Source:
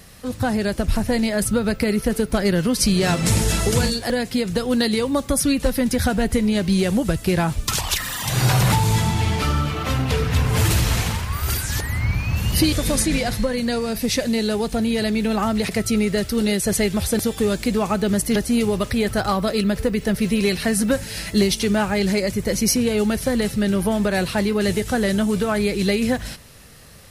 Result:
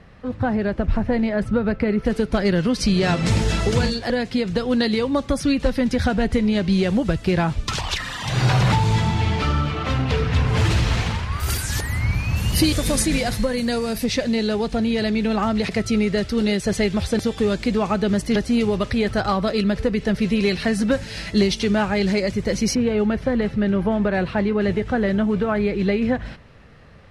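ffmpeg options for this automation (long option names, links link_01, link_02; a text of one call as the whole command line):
ffmpeg -i in.wav -af "asetnsamples=nb_out_samples=441:pad=0,asendcmd='2.05 lowpass f 4500;11.4 lowpass f 12000;14.04 lowpass f 5000;22.75 lowpass f 2200',lowpass=2000" out.wav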